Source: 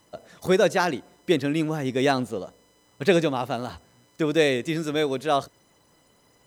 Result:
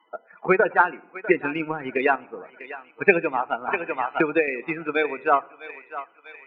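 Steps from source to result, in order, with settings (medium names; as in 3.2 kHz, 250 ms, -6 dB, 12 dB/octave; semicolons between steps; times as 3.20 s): 0.60–1.35 s: careless resampling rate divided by 8×, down none, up hold; cabinet simulation 300–3100 Hz, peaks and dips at 310 Hz -4 dB, 570 Hz -7 dB, 920 Hz +6 dB, 1.4 kHz +6 dB, 2.4 kHz +7 dB; loudest bins only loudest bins 32; thinning echo 648 ms, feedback 58%, high-pass 710 Hz, level -12 dB; 2.15–3.02 s: compression, threshold -33 dBFS, peak gain reduction 8.5 dB; simulated room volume 2200 m³, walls furnished, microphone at 0.58 m; transient shaper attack +7 dB, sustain -5 dB; 3.68–4.48 s: three bands compressed up and down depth 100%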